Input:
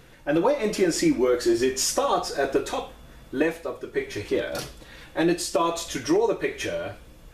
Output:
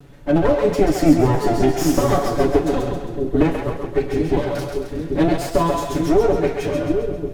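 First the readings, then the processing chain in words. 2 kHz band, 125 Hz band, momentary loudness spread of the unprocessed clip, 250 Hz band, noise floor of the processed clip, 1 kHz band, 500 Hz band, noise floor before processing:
+0.5 dB, +15.5 dB, 12 LU, +7.5 dB, -31 dBFS, +5.5 dB, +6.0 dB, -49 dBFS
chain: comb filter that takes the minimum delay 7 ms; tilt shelf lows +7.5 dB, about 670 Hz; on a send: two-band feedback delay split 450 Hz, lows 790 ms, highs 134 ms, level -4.5 dB; on the sum: trim +4.5 dB

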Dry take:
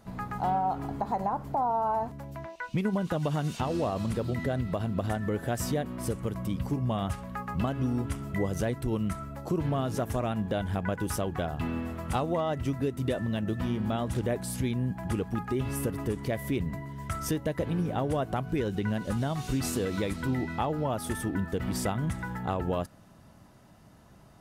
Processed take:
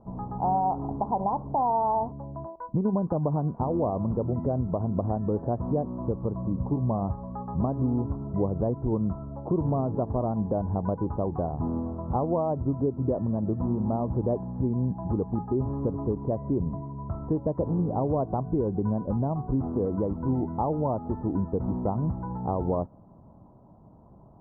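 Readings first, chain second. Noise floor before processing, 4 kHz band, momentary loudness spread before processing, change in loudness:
-55 dBFS, under -40 dB, 4 LU, +2.5 dB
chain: elliptic low-pass 1 kHz, stop band 70 dB; trim +3.5 dB

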